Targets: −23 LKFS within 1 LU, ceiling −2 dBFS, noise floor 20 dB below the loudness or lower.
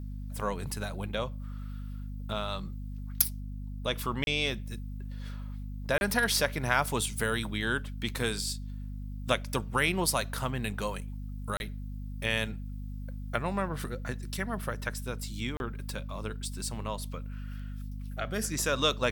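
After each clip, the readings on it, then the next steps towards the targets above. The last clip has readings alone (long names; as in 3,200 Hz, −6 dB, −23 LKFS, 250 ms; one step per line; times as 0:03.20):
number of dropouts 4; longest dropout 31 ms; mains hum 50 Hz; hum harmonics up to 250 Hz; level of the hum −36 dBFS; integrated loudness −33.0 LKFS; sample peak −6.5 dBFS; target loudness −23.0 LKFS
→ repair the gap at 0:04.24/0:05.98/0:11.57/0:15.57, 31 ms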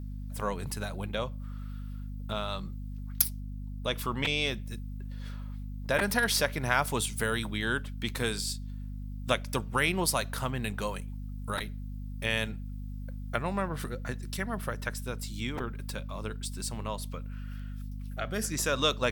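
number of dropouts 0; mains hum 50 Hz; hum harmonics up to 250 Hz; level of the hum −36 dBFS
→ hum removal 50 Hz, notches 5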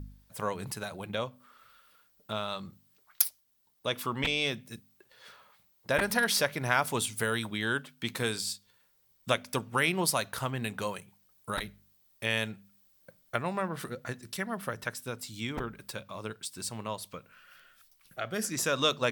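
mains hum none found; integrated loudness −32.0 LKFS; sample peak −7.0 dBFS; target loudness −23.0 LKFS
→ level +9 dB
brickwall limiter −2 dBFS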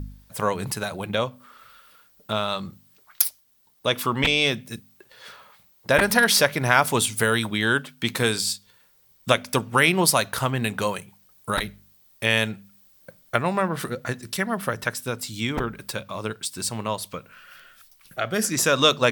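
integrated loudness −23.5 LKFS; sample peak −2.0 dBFS; background noise floor −59 dBFS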